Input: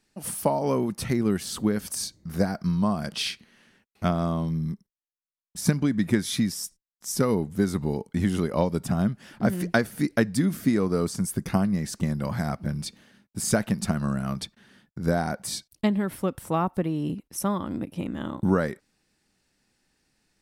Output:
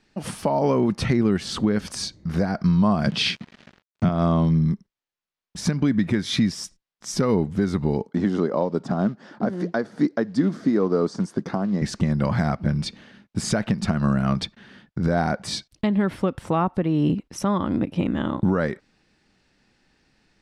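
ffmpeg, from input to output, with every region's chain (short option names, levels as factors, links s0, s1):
-filter_complex "[0:a]asettb=1/sr,asplit=3[s0][s1][s2];[s0]atrim=end=3.064[s3];[s1]atrim=start=3.06:end=4.09,asetpts=PTS-STARTPTS,afade=t=in:d=0.004:c=qsin,afade=t=out:st=1.026:d=0.004:c=qsin,highpass=f=87:w=0.5412,highpass=f=87:w=1.3066,equalizer=f=150:t=o:w=1.8:g=11,acrusher=bits=7:mix=0:aa=0.5[s4];[s2]atrim=start=4.086[s5];[s3][s4]acrossfade=d=0.004:c1=hsin:c2=qsin[s6];[s6][s5]acrossfade=d=0.004:c1=qsin:c2=hsin,asettb=1/sr,asplit=3[s7][s8][s9];[s7]atrim=end=8.064[s10];[s8]atrim=start=8.06:end=11.82,asetpts=PTS-STARTPTS,afade=t=in:d=0.004:c=qsin,afade=t=out:st=3.756:d=0.004:c=qsin,equalizer=f=2600:w=1.3:g=-15,acrusher=bits=9:mode=log:mix=0:aa=0.000001,highpass=250,lowpass=5400[s11];[s9]atrim=start=11.816[s12];[s10][s11]acrossfade=d=0.004:c1=hsin:c2=qsin[s13];[s13][s12]acrossfade=d=0.004:c1=qsin:c2=hsin,lowpass=4400,alimiter=limit=0.106:level=0:latency=1:release=218,volume=2.66"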